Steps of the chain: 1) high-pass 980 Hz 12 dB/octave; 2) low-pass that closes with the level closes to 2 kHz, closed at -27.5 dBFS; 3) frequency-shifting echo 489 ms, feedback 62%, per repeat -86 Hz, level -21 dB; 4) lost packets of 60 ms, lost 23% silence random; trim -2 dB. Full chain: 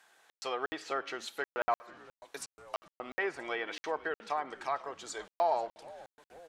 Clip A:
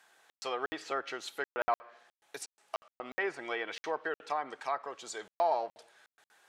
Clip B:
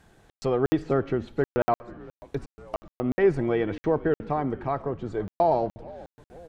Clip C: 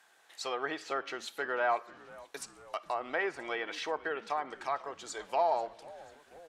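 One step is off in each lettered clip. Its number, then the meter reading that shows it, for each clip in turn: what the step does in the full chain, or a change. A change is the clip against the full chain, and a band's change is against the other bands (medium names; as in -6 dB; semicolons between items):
3, momentary loudness spread change -4 LU; 1, 125 Hz band +22.5 dB; 4, momentary loudness spread change +2 LU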